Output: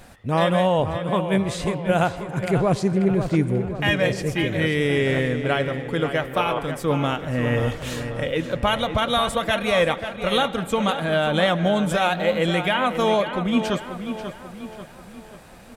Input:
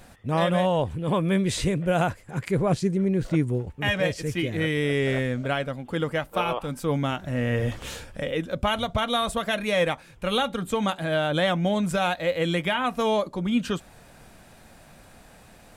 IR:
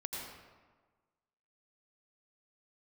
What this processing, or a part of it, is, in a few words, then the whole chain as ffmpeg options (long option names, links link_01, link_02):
filtered reverb send: -filter_complex "[0:a]asettb=1/sr,asplit=3[link_01][link_02][link_03];[link_01]atrim=end=0.964[link_04];[link_02]atrim=start=0.96:end=2.17,asetpts=PTS-STARTPTS,afade=type=in:duration=0.004:curve=qsin,afade=type=out:start_time=1.206:duration=0.004:curve=qsin,agate=range=-6dB:threshold=-22dB:ratio=16:detection=peak[link_05];[link_03]atrim=start=2.166[link_06];[link_04][link_05]acrossfade=duration=0.004:curve1=hsin:curve2=qsin[link_07];[link_07][link_06]acrossfade=duration=0.004:curve1=qsin:curve2=hsin,asplit=2[link_08][link_09];[link_09]highpass=280,lowpass=5100[link_10];[1:a]atrim=start_sample=2205[link_11];[link_10][link_11]afir=irnorm=-1:irlink=0,volume=-14dB[link_12];[link_08][link_12]amix=inputs=2:normalize=0,asplit=2[link_13][link_14];[link_14]adelay=538,lowpass=frequency=4100:poles=1,volume=-9dB,asplit=2[link_15][link_16];[link_16]adelay=538,lowpass=frequency=4100:poles=1,volume=0.49,asplit=2[link_17][link_18];[link_18]adelay=538,lowpass=frequency=4100:poles=1,volume=0.49,asplit=2[link_19][link_20];[link_20]adelay=538,lowpass=frequency=4100:poles=1,volume=0.49,asplit=2[link_21][link_22];[link_22]adelay=538,lowpass=frequency=4100:poles=1,volume=0.49,asplit=2[link_23][link_24];[link_24]adelay=538,lowpass=frequency=4100:poles=1,volume=0.49[link_25];[link_13][link_15][link_17][link_19][link_21][link_23][link_25]amix=inputs=7:normalize=0,volume=2.5dB"